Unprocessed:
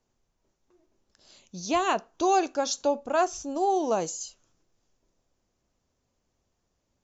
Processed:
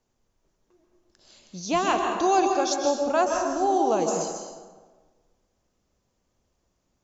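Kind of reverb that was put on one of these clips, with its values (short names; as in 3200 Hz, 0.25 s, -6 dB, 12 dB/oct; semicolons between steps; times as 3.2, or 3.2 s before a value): plate-style reverb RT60 1.4 s, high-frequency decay 0.55×, pre-delay 0.12 s, DRR 2.5 dB; gain +1 dB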